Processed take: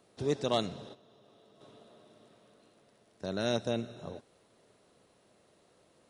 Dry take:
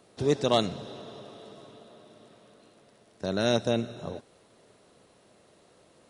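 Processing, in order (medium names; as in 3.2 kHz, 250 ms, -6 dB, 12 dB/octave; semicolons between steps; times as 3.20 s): 0.89–1.61 s: level held to a coarse grid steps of 14 dB; trim -6 dB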